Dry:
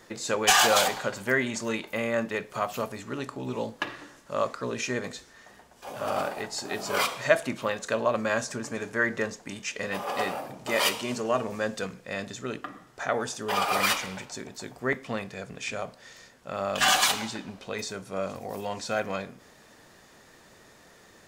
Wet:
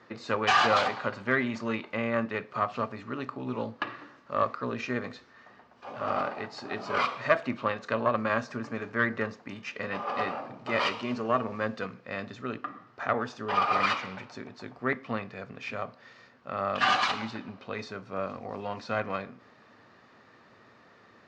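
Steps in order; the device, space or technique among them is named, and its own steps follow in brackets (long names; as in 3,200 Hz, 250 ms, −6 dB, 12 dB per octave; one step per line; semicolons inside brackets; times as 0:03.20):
guitar amplifier (tube saturation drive 13 dB, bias 0.6; bass and treble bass −3 dB, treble +4 dB; loudspeaker in its box 79–3,900 Hz, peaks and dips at 110 Hz +8 dB, 240 Hz +6 dB, 1,200 Hz +7 dB, 3,400 Hz −6 dB)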